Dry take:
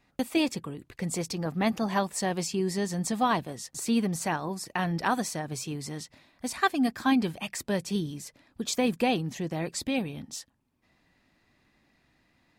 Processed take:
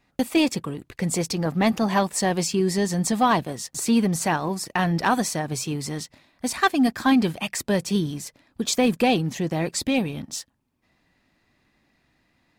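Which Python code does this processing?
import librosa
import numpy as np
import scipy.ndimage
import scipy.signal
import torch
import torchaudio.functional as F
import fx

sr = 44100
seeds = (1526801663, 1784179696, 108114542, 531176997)

y = fx.leveller(x, sr, passes=1)
y = y * 10.0 ** (3.0 / 20.0)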